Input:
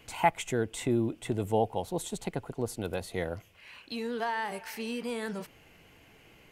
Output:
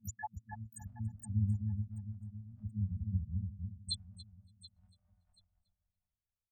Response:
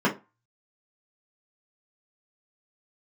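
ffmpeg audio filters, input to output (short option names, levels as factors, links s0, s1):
-filter_complex "[0:a]acompressor=threshold=0.00794:ratio=12,highpass=f=72:w=0.5412,highpass=f=72:w=1.3066,bass=f=250:g=14,treble=f=4000:g=15,afftfilt=real='re*gte(hypot(re,im),0.0891)':imag='im*gte(hypot(re,im),0.0891)':win_size=1024:overlap=0.75,asplit=2[s0][s1];[s1]aecho=0:1:730|1460:0.126|0.0277[s2];[s0][s2]amix=inputs=2:normalize=0,afftfilt=real='re*(1-between(b*sr/4096,110,590))':imag='im*(1-between(b*sr/4096,110,590))':win_size=4096:overlap=0.75,asplit=2[s3][s4];[s4]adelay=283,lowpass=f=830:p=1,volume=0.596,asplit=2[s5][s6];[s6]adelay=283,lowpass=f=830:p=1,volume=0.35,asplit=2[s7][s8];[s8]adelay=283,lowpass=f=830:p=1,volume=0.35,asplit=2[s9][s10];[s10]adelay=283,lowpass=f=830:p=1,volume=0.35[s11];[s5][s7][s9][s11]amix=inputs=4:normalize=0[s12];[s3][s12]amix=inputs=2:normalize=0,asplit=3[s13][s14][s15];[s14]asetrate=37084,aresample=44100,atempo=1.18921,volume=0.282[s16];[s15]asetrate=88200,aresample=44100,atempo=0.5,volume=0.398[s17];[s13][s16][s17]amix=inputs=3:normalize=0,volume=2.82"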